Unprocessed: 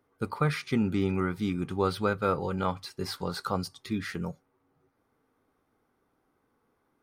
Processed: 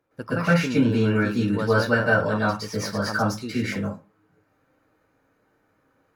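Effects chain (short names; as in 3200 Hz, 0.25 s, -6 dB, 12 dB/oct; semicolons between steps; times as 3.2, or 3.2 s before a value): reverb RT60 0.35 s, pre-delay 0.122 s, DRR -9.5 dB; varispeed +14%; high shelf 11000 Hz -4 dB; gain -2.5 dB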